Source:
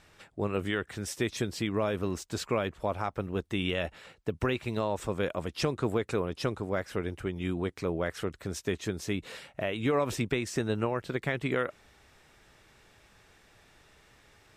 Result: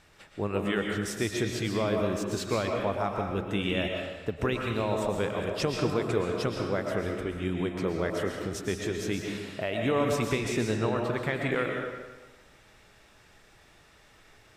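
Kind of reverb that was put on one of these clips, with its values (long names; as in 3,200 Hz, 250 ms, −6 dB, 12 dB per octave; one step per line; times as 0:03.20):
comb and all-pass reverb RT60 1.2 s, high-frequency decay 0.85×, pre-delay 85 ms, DRR 1 dB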